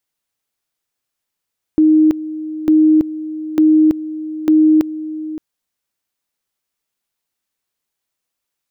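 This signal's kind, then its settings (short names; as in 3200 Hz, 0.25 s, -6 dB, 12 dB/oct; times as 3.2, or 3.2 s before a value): two-level tone 311 Hz -7 dBFS, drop 15 dB, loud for 0.33 s, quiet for 0.57 s, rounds 4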